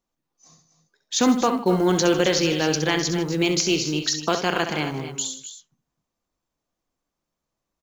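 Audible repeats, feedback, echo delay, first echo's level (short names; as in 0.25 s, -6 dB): 3, no steady repeat, 66 ms, -9.0 dB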